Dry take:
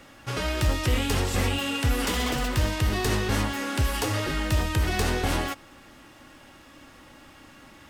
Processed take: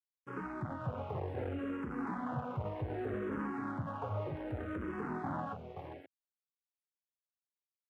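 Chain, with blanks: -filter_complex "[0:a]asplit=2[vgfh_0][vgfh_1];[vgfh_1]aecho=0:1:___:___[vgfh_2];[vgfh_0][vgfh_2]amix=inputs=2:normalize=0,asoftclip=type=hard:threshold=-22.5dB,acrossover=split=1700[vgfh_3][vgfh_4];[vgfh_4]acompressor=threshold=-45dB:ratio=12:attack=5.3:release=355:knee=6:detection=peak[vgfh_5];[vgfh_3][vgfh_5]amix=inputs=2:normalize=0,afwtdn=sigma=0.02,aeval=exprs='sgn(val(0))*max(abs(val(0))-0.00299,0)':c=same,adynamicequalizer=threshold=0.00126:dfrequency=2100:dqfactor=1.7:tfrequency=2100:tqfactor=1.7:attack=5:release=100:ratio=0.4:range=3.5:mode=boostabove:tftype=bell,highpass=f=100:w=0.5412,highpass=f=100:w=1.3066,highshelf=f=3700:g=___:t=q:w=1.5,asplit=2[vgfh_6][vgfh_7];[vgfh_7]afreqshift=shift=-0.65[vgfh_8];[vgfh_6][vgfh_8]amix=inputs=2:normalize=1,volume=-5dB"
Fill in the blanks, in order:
529, 0.376, -6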